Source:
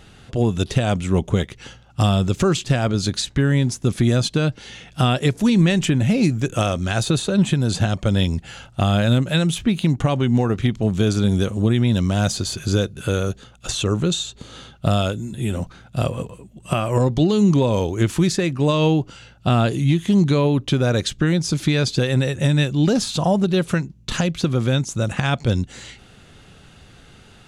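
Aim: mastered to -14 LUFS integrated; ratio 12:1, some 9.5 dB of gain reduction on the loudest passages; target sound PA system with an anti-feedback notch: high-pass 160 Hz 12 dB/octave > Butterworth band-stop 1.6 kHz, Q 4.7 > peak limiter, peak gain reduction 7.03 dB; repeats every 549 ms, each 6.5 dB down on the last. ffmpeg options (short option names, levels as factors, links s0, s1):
-af "acompressor=threshold=0.0794:ratio=12,highpass=160,asuperstop=centerf=1600:order=8:qfactor=4.7,aecho=1:1:549|1098|1647|2196|2745|3294:0.473|0.222|0.105|0.0491|0.0231|0.0109,volume=6.31,alimiter=limit=0.75:level=0:latency=1"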